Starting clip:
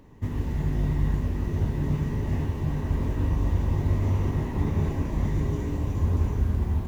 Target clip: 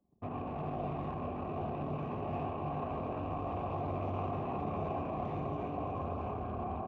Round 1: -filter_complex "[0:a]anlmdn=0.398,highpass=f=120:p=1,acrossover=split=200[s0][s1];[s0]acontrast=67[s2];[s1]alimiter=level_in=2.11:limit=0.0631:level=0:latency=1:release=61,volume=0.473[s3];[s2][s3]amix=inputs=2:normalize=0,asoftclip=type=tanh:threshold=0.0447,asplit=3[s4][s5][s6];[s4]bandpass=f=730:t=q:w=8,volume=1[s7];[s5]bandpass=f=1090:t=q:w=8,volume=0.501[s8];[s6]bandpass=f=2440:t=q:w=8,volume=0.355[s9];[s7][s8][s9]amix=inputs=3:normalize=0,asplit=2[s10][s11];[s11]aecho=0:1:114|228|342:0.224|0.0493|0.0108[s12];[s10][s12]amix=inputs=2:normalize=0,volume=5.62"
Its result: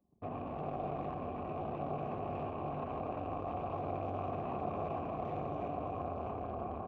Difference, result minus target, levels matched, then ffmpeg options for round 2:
saturation: distortion +8 dB
-filter_complex "[0:a]anlmdn=0.398,highpass=f=120:p=1,acrossover=split=200[s0][s1];[s0]acontrast=67[s2];[s1]alimiter=level_in=2.11:limit=0.0631:level=0:latency=1:release=61,volume=0.473[s3];[s2][s3]amix=inputs=2:normalize=0,asoftclip=type=tanh:threshold=0.119,asplit=3[s4][s5][s6];[s4]bandpass=f=730:t=q:w=8,volume=1[s7];[s5]bandpass=f=1090:t=q:w=8,volume=0.501[s8];[s6]bandpass=f=2440:t=q:w=8,volume=0.355[s9];[s7][s8][s9]amix=inputs=3:normalize=0,asplit=2[s10][s11];[s11]aecho=0:1:114|228|342:0.224|0.0493|0.0108[s12];[s10][s12]amix=inputs=2:normalize=0,volume=5.62"

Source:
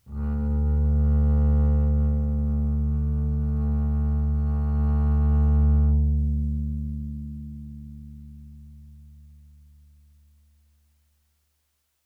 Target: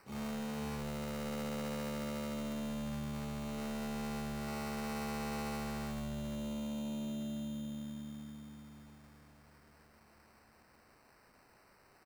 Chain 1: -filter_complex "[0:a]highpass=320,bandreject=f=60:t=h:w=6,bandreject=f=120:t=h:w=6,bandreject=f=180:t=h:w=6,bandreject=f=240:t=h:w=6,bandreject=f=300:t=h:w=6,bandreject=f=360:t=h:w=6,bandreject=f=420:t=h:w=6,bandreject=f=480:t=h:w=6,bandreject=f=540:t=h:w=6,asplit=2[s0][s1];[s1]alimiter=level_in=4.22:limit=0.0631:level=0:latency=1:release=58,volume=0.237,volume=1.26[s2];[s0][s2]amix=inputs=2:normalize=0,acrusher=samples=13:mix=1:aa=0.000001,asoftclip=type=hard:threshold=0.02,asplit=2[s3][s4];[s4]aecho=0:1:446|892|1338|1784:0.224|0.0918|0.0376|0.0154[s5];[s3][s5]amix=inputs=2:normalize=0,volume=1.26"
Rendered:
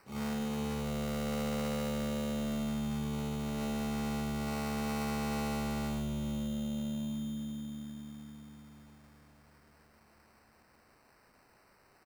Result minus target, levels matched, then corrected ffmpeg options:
hard clipper: distortion -4 dB
-filter_complex "[0:a]highpass=320,bandreject=f=60:t=h:w=6,bandreject=f=120:t=h:w=6,bandreject=f=180:t=h:w=6,bandreject=f=240:t=h:w=6,bandreject=f=300:t=h:w=6,bandreject=f=360:t=h:w=6,bandreject=f=420:t=h:w=6,bandreject=f=480:t=h:w=6,bandreject=f=540:t=h:w=6,asplit=2[s0][s1];[s1]alimiter=level_in=4.22:limit=0.0631:level=0:latency=1:release=58,volume=0.237,volume=1.26[s2];[s0][s2]amix=inputs=2:normalize=0,acrusher=samples=13:mix=1:aa=0.000001,asoftclip=type=hard:threshold=0.01,asplit=2[s3][s4];[s4]aecho=0:1:446|892|1338|1784:0.224|0.0918|0.0376|0.0154[s5];[s3][s5]amix=inputs=2:normalize=0,volume=1.26"

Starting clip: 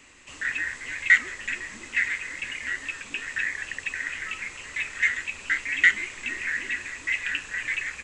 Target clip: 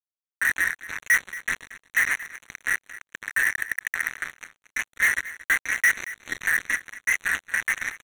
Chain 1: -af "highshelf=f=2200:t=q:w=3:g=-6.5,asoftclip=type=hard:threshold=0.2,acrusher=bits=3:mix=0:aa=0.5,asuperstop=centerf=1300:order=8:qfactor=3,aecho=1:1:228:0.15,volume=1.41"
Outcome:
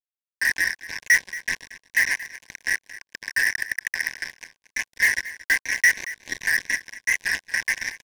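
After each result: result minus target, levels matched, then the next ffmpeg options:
1 kHz band -8.0 dB; hard clipper: distortion -5 dB
-af "highshelf=f=2200:t=q:w=3:g=-6.5,asoftclip=type=hard:threshold=0.2,acrusher=bits=3:mix=0:aa=0.5,asuperstop=centerf=5000:order=8:qfactor=3,aecho=1:1:228:0.15,volume=1.41"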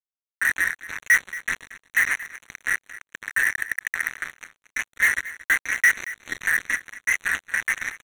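hard clipper: distortion -5 dB
-af "highshelf=f=2200:t=q:w=3:g=-6.5,asoftclip=type=hard:threshold=0.0891,acrusher=bits=3:mix=0:aa=0.5,asuperstop=centerf=5000:order=8:qfactor=3,aecho=1:1:228:0.15,volume=1.41"

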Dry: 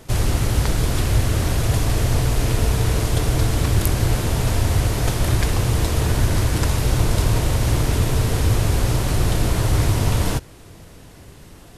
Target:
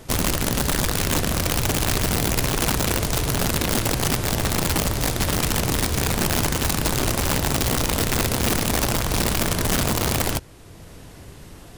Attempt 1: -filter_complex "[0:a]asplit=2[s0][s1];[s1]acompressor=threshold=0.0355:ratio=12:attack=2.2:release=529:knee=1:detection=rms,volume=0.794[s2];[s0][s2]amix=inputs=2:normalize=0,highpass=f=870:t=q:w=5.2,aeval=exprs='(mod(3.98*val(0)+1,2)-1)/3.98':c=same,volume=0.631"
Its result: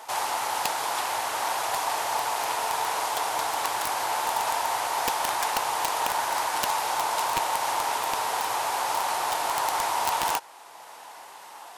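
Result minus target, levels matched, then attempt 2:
1 kHz band +10.0 dB
-filter_complex "[0:a]asplit=2[s0][s1];[s1]acompressor=threshold=0.0355:ratio=12:attack=2.2:release=529:knee=1:detection=rms,volume=0.794[s2];[s0][s2]amix=inputs=2:normalize=0,aeval=exprs='(mod(3.98*val(0)+1,2)-1)/3.98':c=same,volume=0.631"

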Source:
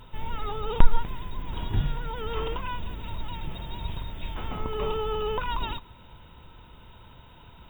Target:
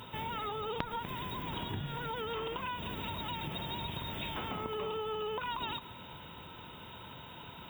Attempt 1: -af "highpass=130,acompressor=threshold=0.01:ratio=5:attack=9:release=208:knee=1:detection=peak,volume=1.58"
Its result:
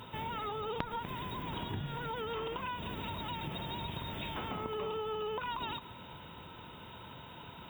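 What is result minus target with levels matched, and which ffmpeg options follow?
8 kHz band -3.0 dB
-af "highpass=130,acompressor=threshold=0.01:ratio=5:attack=9:release=208:knee=1:detection=peak,highshelf=f=3200:g=4.5,volume=1.58"

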